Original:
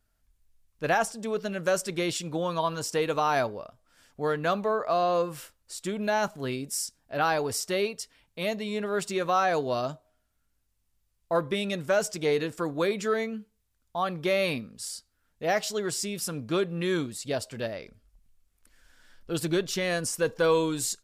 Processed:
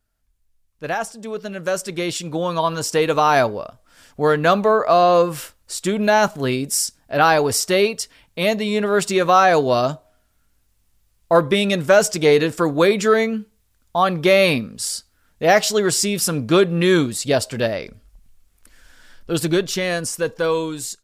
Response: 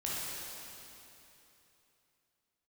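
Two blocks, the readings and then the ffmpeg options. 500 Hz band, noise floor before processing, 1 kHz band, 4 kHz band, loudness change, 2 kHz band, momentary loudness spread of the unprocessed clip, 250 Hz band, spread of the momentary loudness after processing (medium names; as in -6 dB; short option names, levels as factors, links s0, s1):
+10.0 dB, -73 dBFS, +10.5 dB, +10.0 dB, +10.5 dB, +10.0 dB, 10 LU, +10.5 dB, 11 LU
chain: -af "dynaudnorm=f=690:g=7:m=4.73"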